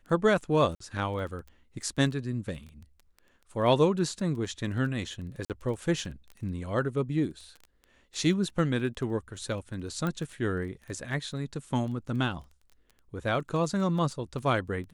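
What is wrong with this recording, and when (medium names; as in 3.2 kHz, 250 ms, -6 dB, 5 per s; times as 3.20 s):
crackle 11 per s -37 dBFS
0.75–0.80 s: dropout 54 ms
5.45–5.50 s: dropout 48 ms
10.07 s: pop -19 dBFS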